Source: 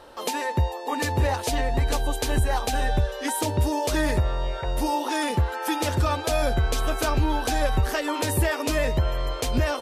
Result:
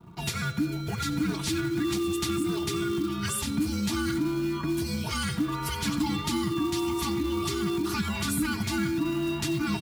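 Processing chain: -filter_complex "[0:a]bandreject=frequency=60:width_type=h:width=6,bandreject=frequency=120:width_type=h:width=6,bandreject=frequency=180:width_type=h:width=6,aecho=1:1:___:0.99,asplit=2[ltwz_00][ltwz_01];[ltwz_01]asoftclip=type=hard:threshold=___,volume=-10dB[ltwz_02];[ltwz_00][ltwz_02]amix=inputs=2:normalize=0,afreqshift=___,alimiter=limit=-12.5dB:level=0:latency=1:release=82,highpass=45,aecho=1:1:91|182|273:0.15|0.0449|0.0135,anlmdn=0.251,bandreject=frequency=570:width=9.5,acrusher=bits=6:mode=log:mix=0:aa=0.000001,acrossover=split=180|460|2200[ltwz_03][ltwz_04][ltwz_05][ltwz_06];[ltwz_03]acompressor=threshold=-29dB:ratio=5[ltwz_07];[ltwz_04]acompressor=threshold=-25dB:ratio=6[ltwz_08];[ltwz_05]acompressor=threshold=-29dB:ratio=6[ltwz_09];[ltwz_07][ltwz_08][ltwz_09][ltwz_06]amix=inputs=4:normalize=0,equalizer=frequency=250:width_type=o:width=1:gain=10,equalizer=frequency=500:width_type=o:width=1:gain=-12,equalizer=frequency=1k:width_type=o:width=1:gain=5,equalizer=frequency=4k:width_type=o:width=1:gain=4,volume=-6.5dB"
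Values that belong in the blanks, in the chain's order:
3.9, -20dB, -380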